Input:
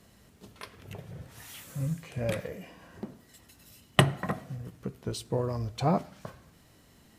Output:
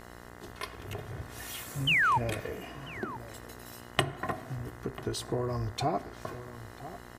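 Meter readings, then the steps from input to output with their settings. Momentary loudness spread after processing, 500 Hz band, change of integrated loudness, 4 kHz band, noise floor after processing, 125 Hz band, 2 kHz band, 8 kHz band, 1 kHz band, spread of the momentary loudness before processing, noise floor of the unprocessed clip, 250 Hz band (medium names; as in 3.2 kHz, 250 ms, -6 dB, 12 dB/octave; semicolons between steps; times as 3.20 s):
19 LU, -2.0 dB, -1.5 dB, +2.0 dB, -49 dBFS, -4.5 dB, +7.0 dB, +0.5 dB, +3.5 dB, 20 LU, -60 dBFS, -4.0 dB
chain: comb 2.8 ms, depth 68%; compression 2:1, threshold -36 dBFS, peak gain reduction 12.5 dB; painted sound fall, 1.87–2.18 s, 840–3200 Hz -28 dBFS; mains buzz 60 Hz, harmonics 34, -53 dBFS -2 dB/octave; echo from a far wall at 170 m, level -14 dB; trim +3.5 dB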